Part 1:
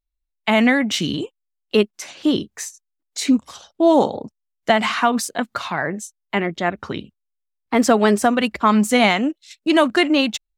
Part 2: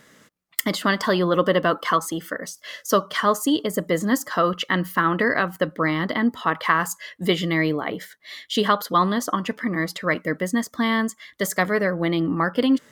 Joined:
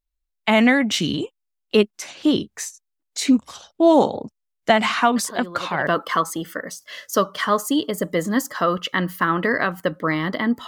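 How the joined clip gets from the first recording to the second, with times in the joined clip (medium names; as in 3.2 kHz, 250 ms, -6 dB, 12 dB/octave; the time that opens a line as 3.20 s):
part 1
5.16 s: add part 2 from 0.92 s 0.71 s -15.5 dB
5.87 s: go over to part 2 from 1.63 s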